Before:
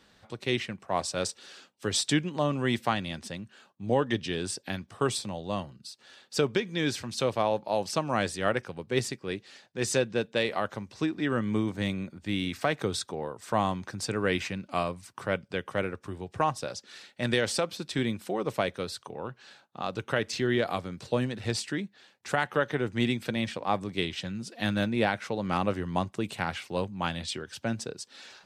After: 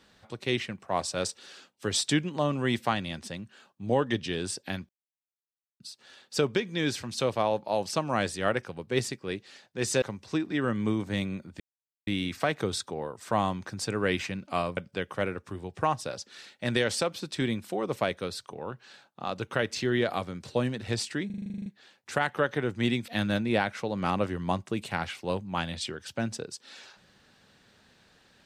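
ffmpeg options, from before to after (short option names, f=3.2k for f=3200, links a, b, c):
-filter_complex "[0:a]asplit=17[a][b][c][d][e][f][g][h][i][j][k][l][m][n][o][p][q];[a]atrim=end=4.89,asetpts=PTS-STARTPTS,afade=t=out:st=4.886:d=0.004:c=hsin[r];[b]atrim=start=4.89:end=5.8,asetpts=PTS-STARTPTS,volume=0[s];[c]atrim=start=5.8:end=10.022,asetpts=PTS-STARTPTS,afade=t=in:d=0.004:c=hsin[t];[d]atrim=start=10.698:end=12.28,asetpts=PTS-STARTPTS,afade=t=out:st=1.578:d=0.004:c=hsin,apad=pad_dur=0.47[u];[e]atrim=start=12.28:end=14.982,asetpts=PTS-STARTPTS,afade=t=in:d=0.004:c=hsin[v];[f]atrim=start=15.338:end=21.872[w];[g]atrim=start=21.828:end=21.872[x];[h]atrim=start=21.828:end=21.872[y];[i]atrim=start=21.828:end=21.872[z];[j]atrim=start=21.828:end=21.872[aa];[k]atrim=start=21.828:end=21.872[ab];[l]atrim=start=21.828:end=21.872[ac];[m]atrim=start=21.828:end=21.872[ad];[n]atrim=start=21.828:end=21.872[ae];[o]atrim=start=21.828:end=21.872[af];[p]atrim=start=21.828:end=23.252[ag];[q]atrim=start=24.548[ah];[r][s][t]concat=n=3:v=0:a=1[ai];[u][v]concat=n=2:v=0:a=1[aj];[ai][aj]acrossfade=d=0.004:c1=hsin:c2=hsin[ak];[ak][w]acrossfade=d=0.004:c1=hsin:c2=hsin[al];[al][x]acrossfade=d=0.004:c1=hsin:c2=hsin[am];[am][y]acrossfade=d=0.004:c1=hsin:c2=hsin[an];[an][z]acrossfade=d=0.004:c1=hsin:c2=hsin[ao];[ao][aa]acrossfade=d=0.004:c1=hsin:c2=hsin[ap];[ap][ab]acrossfade=d=0.004:c1=hsin:c2=hsin[aq];[aq][ac]acrossfade=d=0.004:c1=hsin:c2=hsin[ar];[ar][ad]acrossfade=d=0.004:c1=hsin:c2=hsin[as];[as][ae]acrossfade=d=0.004:c1=hsin:c2=hsin[at];[at][af]acrossfade=d=0.004:c1=hsin:c2=hsin[au];[au][ag]acrossfade=d=0.004:c1=hsin:c2=hsin[av];[av][ah]acrossfade=d=0.004:c1=hsin:c2=hsin"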